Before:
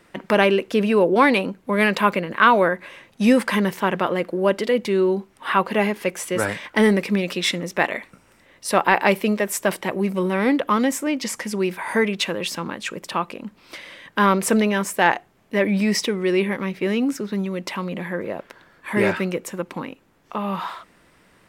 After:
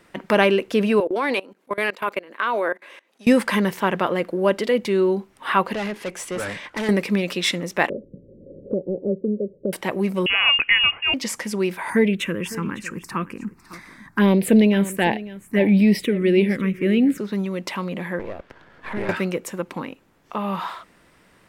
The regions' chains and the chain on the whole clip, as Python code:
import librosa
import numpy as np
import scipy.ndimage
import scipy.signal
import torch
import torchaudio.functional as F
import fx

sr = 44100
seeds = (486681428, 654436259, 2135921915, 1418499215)

y = fx.chain(x, sr, fx.highpass(hz=280.0, slope=24),
    fx.level_steps(step_db=22), at=(1.0, 3.27))
y = fx.chain(y, sr, fx.lowpass(hz=10000.0, slope=12),
    fx.tube_stage(drive_db=23.0, bias=0.25), at=(5.73, 6.89))
y = fx.chain(y, sr, fx.cheby_ripple(hz=570.0, ripple_db=3),
    fx.band_squash(depth_pct=70), at=(7.89, 9.73))
y = fx.chain(y, sr, fx.peak_eq(hz=770.0, db=6.5, octaves=0.73),
    fx.freq_invert(carrier_hz=3100), at=(10.26, 11.14))
y = fx.chain(y, sr, fx.low_shelf(hz=410.0, db=7.0),
    fx.env_phaser(low_hz=480.0, high_hz=1300.0, full_db=-11.5),
    fx.echo_single(ms=555, db=-17.0), at=(11.9, 17.18))
y = fx.chain(y, sr, fx.halfwave_gain(db=-12.0),
    fx.lowpass(hz=1900.0, slope=6),
    fx.band_squash(depth_pct=70), at=(18.19, 19.09))